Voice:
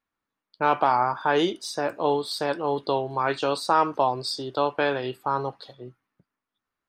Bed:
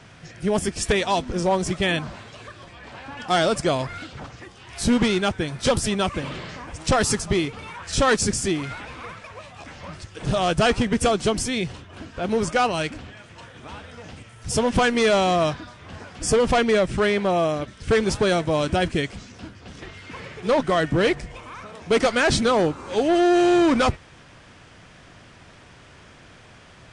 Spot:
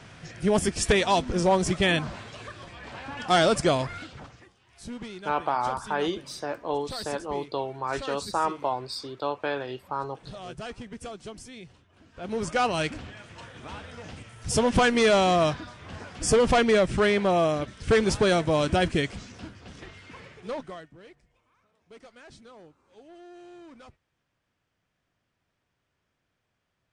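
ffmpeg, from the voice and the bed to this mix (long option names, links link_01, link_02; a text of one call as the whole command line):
ffmpeg -i stem1.wav -i stem2.wav -filter_complex "[0:a]adelay=4650,volume=-5.5dB[link_01];[1:a]volume=17dB,afade=type=out:start_time=3.67:duration=0.92:silence=0.11885,afade=type=in:start_time=12.03:duration=0.81:silence=0.133352,afade=type=out:start_time=19.24:duration=1.65:silence=0.0354813[link_02];[link_01][link_02]amix=inputs=2:normalize=0" out.wav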